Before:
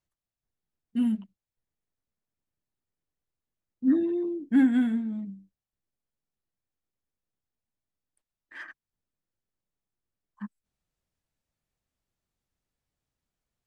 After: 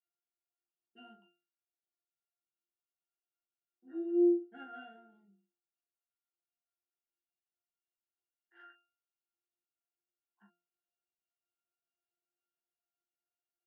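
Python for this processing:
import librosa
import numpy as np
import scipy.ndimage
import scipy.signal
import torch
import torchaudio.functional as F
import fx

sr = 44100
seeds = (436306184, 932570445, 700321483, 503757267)

y = scipy.signal.sosfilt(scipy.signal.butter(4, 420.0, 'highpass', fs=sr, output='sos'), x)
y = fx.octave_resonator(y, sr, note='F', decay_s=0.38)
y = fx.room_early_taps(y, sr, ms=(15, 40), db=(-3.5, -7.0))
y = y * 10.0 ** (9.0 / 20.0)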